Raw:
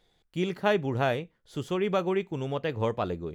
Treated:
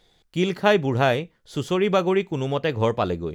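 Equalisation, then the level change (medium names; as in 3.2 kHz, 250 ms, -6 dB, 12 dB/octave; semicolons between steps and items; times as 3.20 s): peaking EQ 5.2 kHz +3.5 dB 1.4 oct; +6.5 dB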